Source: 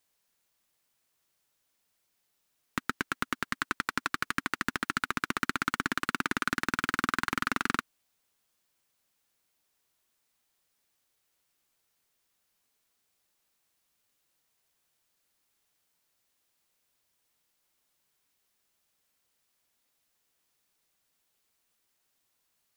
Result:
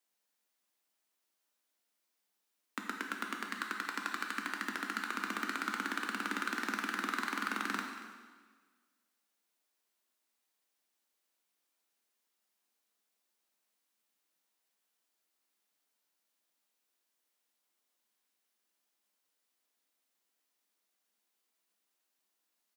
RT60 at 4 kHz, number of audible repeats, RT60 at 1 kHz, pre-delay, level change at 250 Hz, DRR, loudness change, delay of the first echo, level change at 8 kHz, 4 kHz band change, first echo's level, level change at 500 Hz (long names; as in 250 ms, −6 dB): 1.4 s, 1, 1.4 s, 6 ms, −5.5 dB, 2.0 dB, −5.5 dB, 233 ms, −6.0 dB, −5.5 dB, −17.0 dB, −5.5 dB